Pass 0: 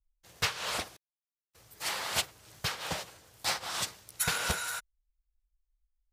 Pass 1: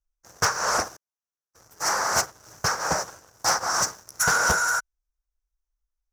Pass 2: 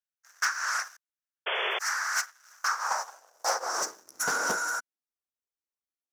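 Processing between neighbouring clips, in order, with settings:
drawn EQ curve 110 Hz 0 dB, 1,500 Hz +8 dB, 3,400 Hz −23 dB, 5,800 Hz +11 dB, 8,800 Hz −4 dB; leveller curve on the samples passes 2
high-pass filter sweep 1,600 Hz → 270 Hz, 0:02.44–0:04.15; sound drawn into the spectrogram noise, 0:01.46–0:01.79, 360–3,500 Hz −22 dBFS; level −7.5 dB

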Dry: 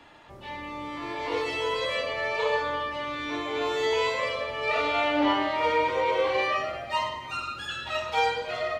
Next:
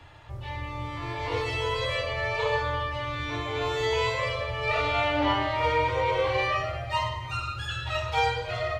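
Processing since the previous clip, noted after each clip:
low shelf with overshoot 150 Hz +11 dB, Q 3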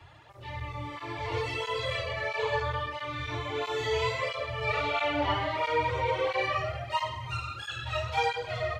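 through-zero flanger with one copy inverted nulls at 1.5 Hz, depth 4.2 ms

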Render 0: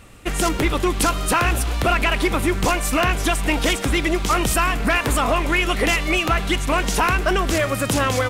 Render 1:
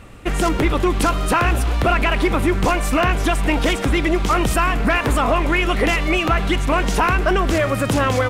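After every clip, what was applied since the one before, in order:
high-shelf EQ 3,400 Hz −9.5 dB
in parallel at −2 dB: brickwall limiter −19.5 dBFS, peak gain reduction 9 dB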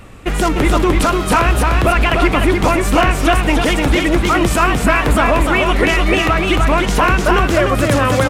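tape wow and flutter 72 cents
single-tap delay 300 ms −3.5 dB
level +3 dB

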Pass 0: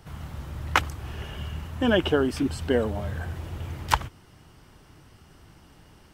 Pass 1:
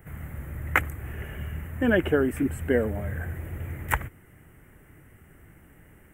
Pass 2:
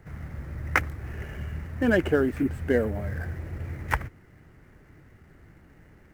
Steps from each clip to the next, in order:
drawn EQ curve 530 Hz 0 dB, 1,000 Hz −8 dB, 2,000 Hz +6 dB, 4,700 Hz −29 dB, 7,400 Hz −4 dB, 14,000 Hz +8 dB
running median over 9 samples

